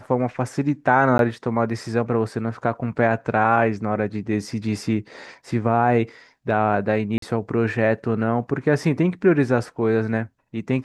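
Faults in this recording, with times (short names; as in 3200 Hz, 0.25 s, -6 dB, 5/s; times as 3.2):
1.18–1.19 gap 12 ms
7.18–7.22 gap 43 ms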